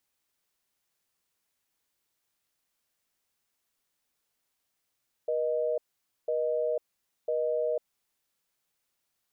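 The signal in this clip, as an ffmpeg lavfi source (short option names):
-f lavfi -i "aevalsrc='0.0376*(sin(2*PI*480*t)+sin(2*PI*620*t))*clip(min(mod(t,1),0.5-mod(t,1))/0.005,0,1)':d=2.93:s=44100"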